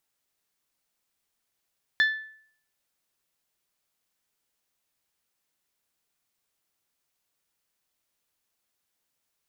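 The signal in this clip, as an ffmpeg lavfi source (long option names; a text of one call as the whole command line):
ffmpeg -f lavfi -i "aevalsrc='0.158*pow(10,-3*t/0.59)*sin(2*PI*1750*t)+0.0562*pow(10,-3*t/0.363)*sin(2*PI*3500*t)+0.02*pow(10,-3*t/0.32)*sin(2*PI*4200*t)+0.00708*pow(10,-3*t/0.273)*sin(2*PI*5250*t)+0.00251*pow(10,-3*t/0.224)*sin(2*PI*7000*t)':duration=0.89:sample_rate=44100" out.wav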